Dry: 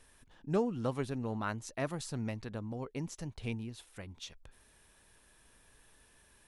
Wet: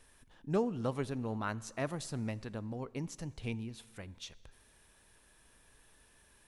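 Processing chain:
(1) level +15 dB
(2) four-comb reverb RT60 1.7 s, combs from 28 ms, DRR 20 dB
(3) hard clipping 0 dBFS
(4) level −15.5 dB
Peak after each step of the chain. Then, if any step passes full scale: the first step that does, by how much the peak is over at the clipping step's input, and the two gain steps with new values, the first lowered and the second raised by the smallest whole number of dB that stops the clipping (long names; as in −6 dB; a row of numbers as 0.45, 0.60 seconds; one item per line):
−4.0, −4.0, −4.0, −19.5 dBFS
no step passes full scale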